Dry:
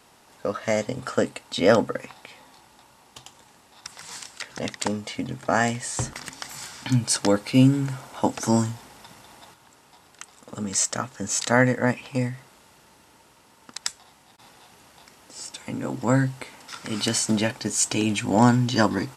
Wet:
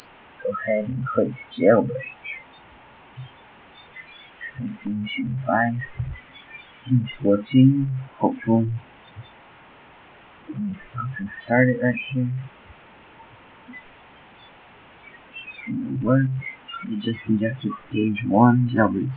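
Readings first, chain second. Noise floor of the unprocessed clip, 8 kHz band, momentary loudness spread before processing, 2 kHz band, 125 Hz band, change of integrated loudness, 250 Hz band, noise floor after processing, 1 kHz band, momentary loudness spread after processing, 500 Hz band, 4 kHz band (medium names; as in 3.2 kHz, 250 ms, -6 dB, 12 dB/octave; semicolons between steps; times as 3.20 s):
-56 dBFS, under -40 dB, 18 LU, +0.5 dB, +3.0 dB, +1.0 dB, +2.5 dB, -49 dBFS, +0.5 dB, 23 LU, +1.5 dB, -8.5 dB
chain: one-bit delta coder 16 kbps, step -20.5 dBFS; spectral noise reduction 24 dB; trim +2.5 dB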